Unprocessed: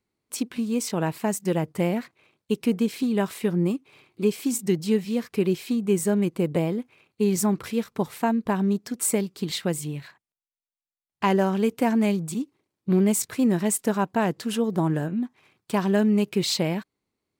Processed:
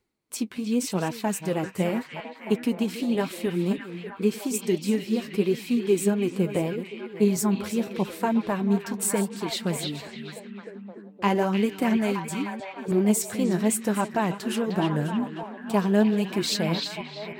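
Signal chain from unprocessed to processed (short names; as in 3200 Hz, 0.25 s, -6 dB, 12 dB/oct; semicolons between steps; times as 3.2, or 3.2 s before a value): reverse delay 0.315 s, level -13 dB; flange 0.85 Hz, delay 2 ms, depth 9.4 ms, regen +39%; delay with a stepping band-pass 0.306 s, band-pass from 3100 Hz, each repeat -0.7 oct, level -1.5 dB; reverse; upward compressor, threshold -40 dBFS; reverse; gain +2.5 dB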